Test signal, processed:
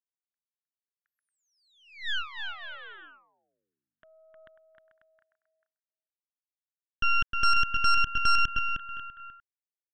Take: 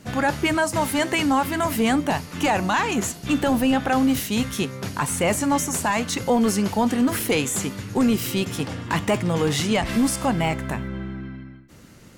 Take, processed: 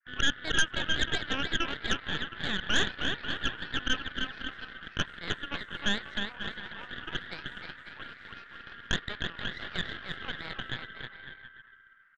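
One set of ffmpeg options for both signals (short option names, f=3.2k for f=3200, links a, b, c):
-filter_complex "[0:a]asplit=2[a][b];[b]aecho=0:1:310|542.5|716.9|847.7|945.7:0.631|0.398|0.251|0.158|0.1[c];[a][c]amix=inputs=2:normalize=0,agate=range=-33dB:threshold=-40dB:ratio=3:detection=peak,asuperpass=centerf=1600:order=4:qfactor=3.4,aeval=exprs='0.168*(cos(1*acos(clip(val(0)/0.168,-1,1)))-cos(1*PI/2))+0.0188*(cos(3*acos(clip(val(0)/0.168,-1,1)))-cos(3*PI/2))+0.0596*(cos(6*acos(clip(val(0)/0.168,-1,1)))-cos(6*PI/2))':c=same"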